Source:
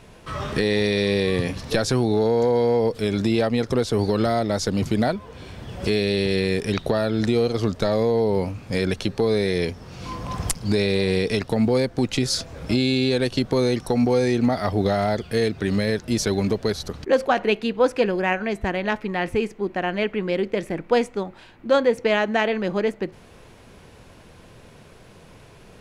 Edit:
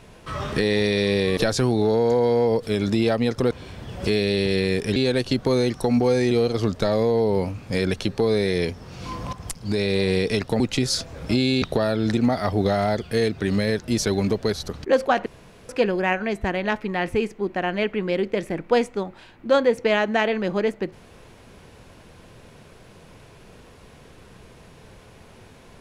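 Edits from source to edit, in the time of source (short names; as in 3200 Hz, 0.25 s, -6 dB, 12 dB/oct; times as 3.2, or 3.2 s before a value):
1.37–1.69 cut
3.83–5.31 cut
6.76–7.31 swap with 13.02–14.37
10.33–11 fade in, from -13 dB
11.6–12 cut
17.46–17.89 room tone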